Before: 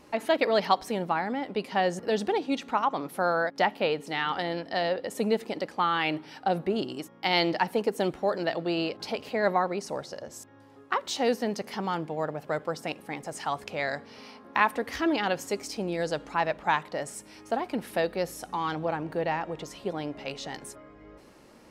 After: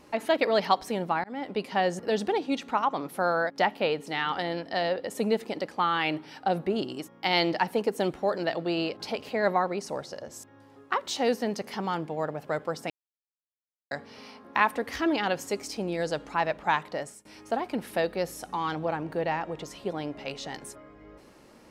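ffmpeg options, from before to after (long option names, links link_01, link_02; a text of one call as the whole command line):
ffmpeg -i in.wav -filter_complex "[0:a]asplit=5[link_01][link_02][link_03][link_04][link_05];[link_01]atrim=end=1.24,asetpts=PTS-STARTPTS,afade=type=out:start_time=1.236:duration=0.004:curve=hsin[link_06];[link_02]atrim=start=1.24:end=12.9,asetpts=PTS-STARTPTS,afade=type=in:duration=0.28:curve=qsin,afade=type=out:start_time=11.656:duration=0.004:curve=hsin[link_07];[link_03]atrim=start=12.9:end=13.91,asetpts=PTS-STARTPTS,volume=0[link_08];[link_04]atrim=start=13.91:end=17.25,asetpts=PTS-STARTPTS,afade=type=in:duration=0.004:curve=hsin,afade=type=out:start_time=3.06:duration=0.28:silence=0.0749894[link_09];[link_05]atrim=start=17.25,asetpts=PTS-STARTPTS,afade=type=in:duration=0.004:curve=hsin:silence=0.0749894[link_10];[link_06][link_07][link_08][link_09][link_10]concat=n=5:v=0:a=1" out.wav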